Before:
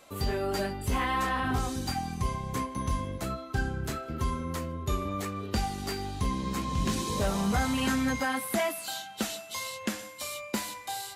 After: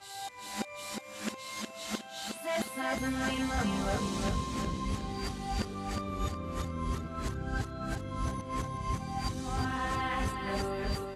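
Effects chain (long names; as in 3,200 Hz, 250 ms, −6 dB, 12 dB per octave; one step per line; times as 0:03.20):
played backwards from end to start
Bessel low-pass filter 9,200 Hz, order 4
repeating echo 362 ms, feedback 40%, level −5 dB
level −4.5 dB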